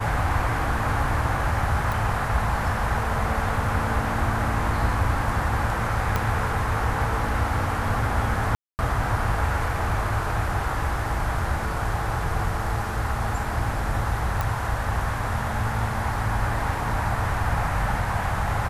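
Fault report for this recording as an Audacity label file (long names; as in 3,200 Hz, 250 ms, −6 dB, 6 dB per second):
1.920000	1.920000	click
6.160000	6.160000	click −9 dBFS
8.550000	8.790000	drop-out 239 ms
14.410000	14.410000	click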